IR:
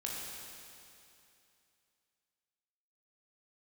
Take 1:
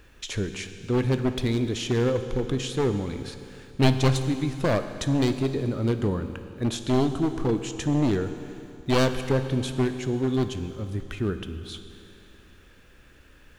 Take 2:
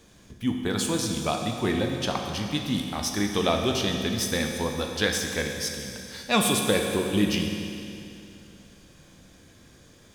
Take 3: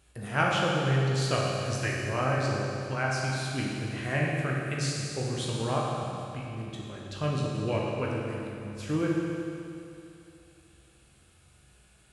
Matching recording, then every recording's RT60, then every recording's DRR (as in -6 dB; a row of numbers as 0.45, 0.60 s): 3; 2.7, 2.7, 2.7 s; 8.5, 2.0, -4.0 dB